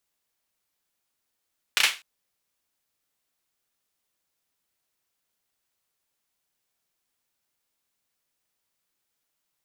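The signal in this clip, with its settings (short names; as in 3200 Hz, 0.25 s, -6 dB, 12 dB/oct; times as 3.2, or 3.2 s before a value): hand clap length 0.25 s, bursts 3, apart 32 ms, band 2500 Hz, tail 0.28 s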